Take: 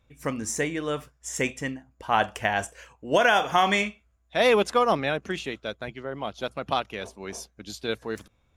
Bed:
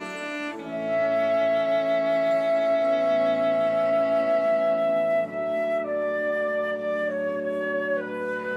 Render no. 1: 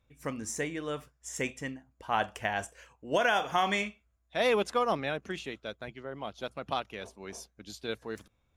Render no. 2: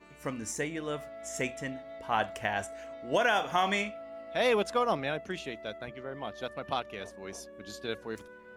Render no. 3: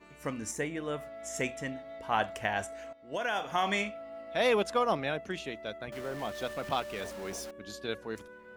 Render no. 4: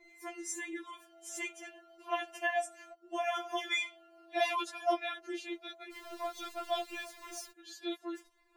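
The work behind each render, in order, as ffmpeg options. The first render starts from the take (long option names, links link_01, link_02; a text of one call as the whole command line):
ffmpeg -i in.wav -af "volume=-6.5dB" out.wav
ffmpeg -i in.wav -i bed.wav -filter_complex "[1:a]volume=-22dB[link_01];[0:a][link_01]amix=inputs=2:normalize=0" out.wav
ffmpeg -i in.wav -filter_complex "[0:a]asettb=1/sr,asplit=3[link_01][link_02][link_03];[link_01]atrim=end=0.514[link_04];[link_02]atrim=start=0.51:end=1.06,asetpts=PTS-STARTPTS,afade=type=in:duration=0.004:curve=qsin,afade=type=out:start_time=0.546:duration=0.004:curve=qsin,equalizer=frequency=5200:width_type=o:width=1.3:gain=-5.5[link_05];[link_03]atrim=start=1.056[link_06];[link_04][link_05]acrossfade=duration=0.004:curve1=hsin:curve2=qsin[link_07];[link_07][link_06]acrossfade=duration=0.004:curve1=qsin:curve2=hsin,asettb=1/sr,asplit=3[link_08][link_09][link_10];[link_08]atrim=end=5.924[link_11];[link_09]atrim=start=5.92:end=7.51,asetpts=PTS-STARTPTS,afade=type=in:duration=0.004:curve=qsin,afade=type=out:start_time=1.586:duration=0.004:curve=qsin,aeval=exprs='val(0)+0.5*0.00944*sgn(val(0))':channel_layout=same[link_12];[link_10]atrim=start=7.506[link_13];[link_11][link_12]acrossfade=duration=0.004:curve1=hsin:curve2=qsin[link_14];[link_14][link_13]acrossfade=duration=0.004:curve1=qsin:curve2=hsin,asplit=2[link_15][link_16];[link_15]atrim=end=2.93,asetpts=PTS-STARTPTS,afade=type=out:start_time=2.926:duration=0.004:curve=hsin:silence=0.177828[link_17];[link_16]atrim=start=2.93,asetpts=PTS-STARTPTS,afade=type=in:duration=0.9:silence=0.177828[link_18];[link_17][link_18]concat=n=2:v=0:a=1" out.wav
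ffmpeg -i in.wav -af "afftfilt=real='re*4*eq(mod(b,16),0)':imag='im*4*eq(mod(b,16),0)':win_size=2048:overlap=0.75" out.wav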